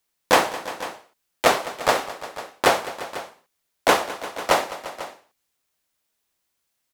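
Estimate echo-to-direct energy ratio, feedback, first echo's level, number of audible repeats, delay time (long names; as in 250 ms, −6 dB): −11.5 dB, repeats not evenly spaced, −16.5 dB, 3, 208 ms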